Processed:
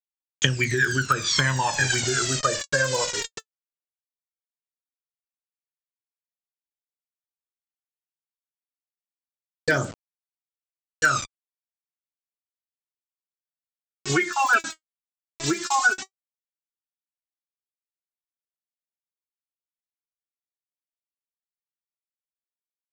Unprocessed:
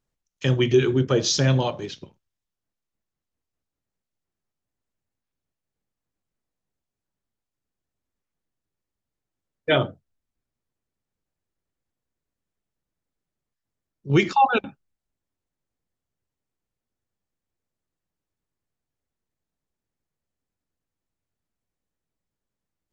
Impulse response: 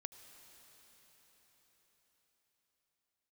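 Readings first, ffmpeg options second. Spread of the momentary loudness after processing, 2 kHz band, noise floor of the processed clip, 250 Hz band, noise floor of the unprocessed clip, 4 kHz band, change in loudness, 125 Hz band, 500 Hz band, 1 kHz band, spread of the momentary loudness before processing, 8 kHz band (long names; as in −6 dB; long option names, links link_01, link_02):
11 LU, +10.0 dB, below −85 dBFS, −5.0 dB, below −85 dBFS, +3.5 dB, −1.5 dB, −4.0 dB, −4.5 dB, +0.5 dB, 15 LU, can't be measured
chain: -filter_complex "[0:a]lowpass=frequency=1600:width_type=q:width=5.2,asplit=2[link_01][link_02];[link_02]adelay=1341,volume=-7dB,highshelf=frequency=4000:gain=-30.2[link_03];[link_01][link_03]amix=inputs=2:normalize=0,aresample=16000,acrusher=bits=6:mix=0:aa=0.000001,aresample=44100,aphaser=in_gain=1:out_gain=1:delay=3.3:decay=0.78:speed=0.1:type=triangular,acompressor=threshold=-24dB:ratio=10,crystalizer=i=9.5:c=0,volume=1dB"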